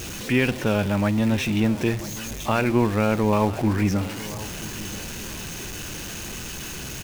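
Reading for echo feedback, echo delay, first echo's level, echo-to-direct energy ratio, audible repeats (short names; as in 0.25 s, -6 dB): 31%, 0.985 s, -17.0 dB, -16.5 dB, 2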